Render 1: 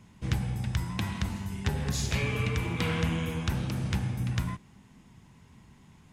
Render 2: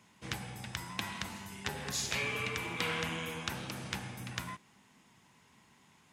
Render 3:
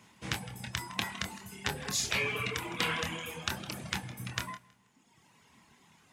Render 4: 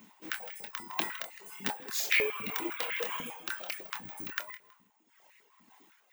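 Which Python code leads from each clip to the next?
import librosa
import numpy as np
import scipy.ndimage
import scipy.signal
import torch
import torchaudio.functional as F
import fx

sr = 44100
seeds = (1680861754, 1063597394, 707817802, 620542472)

y1 = fx.highpass(x, sr, hz=690.0, slope=6)
y2 = fx.echo_feedback(y1, sr, ms=161, feedback_pct=33, wet_db=-13.0)
y2 = fx.dereverb_blind(y2, sr, rt60_s=1.4)
y2 = fx.doubler(y2, sr, ms=26.0, db=-7)
y2 = F.gain(torch.from_numpy(y2), 4.0).numpy()
y3 = (np.kron(y2[::2], np.eye(2)[0]) * 2)[:len(y2)]
y3 = y3 * (1.0 - 0.57 / 2.0 + 0.57 / 2.0 * np.cos(2.0 * np.pi * 1.9 * (np.arange(len(y3)) / sr)))
y3 = fx.filter_held_highpass(y3, sr, hz=10.0, low_hz=230.0, high_hz=2000.0)
y3 = F.gain(torch.from_numpy(y3), -2.0).numpy()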